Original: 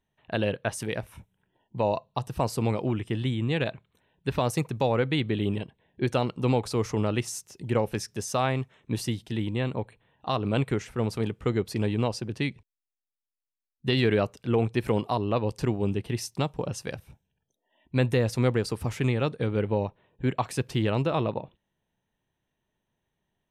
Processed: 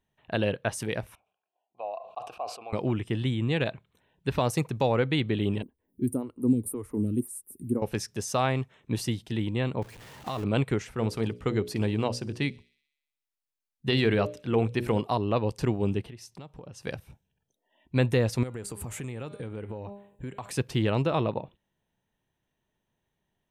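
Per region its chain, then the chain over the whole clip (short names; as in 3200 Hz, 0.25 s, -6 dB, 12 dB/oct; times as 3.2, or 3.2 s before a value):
1.15–2.73 vowel filter a + bell 150 Hz -13 dB 1.4 oct + sustainer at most 91 dB/s
5.62–7.82 EQ curve 100 Hz 0 dB, 150 Hz -6 dB, 250 Hz +7 dB, 730 Hz -17 dB, 1000 Hz -13 dB, 2400 Hz -19 dB, 6100 Hz -22 dB, 9400 Hz +15 dB + photocell phaser 1.9 Hz
9.82–10.44 zero-crossing step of -31 dBFS + level quantiser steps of 16 dB
10.94–15.01 notches 60/120/180/240/300/360/420/480/540/600 Hz + thin delay 62 ms, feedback 65%, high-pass 2900 Hz, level -24 dB
16.04–16.83 high shelf 7200 Hz -7 dB + compressor 4:1, threshold -43 dBFS
18.43–20.5 resonant high shelf 6400 Hz +6.5 dB, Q 3 + de-hum 201.3 Hz, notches 33 + compressor 8:1, threshold -33 dBFS
whole clip: dry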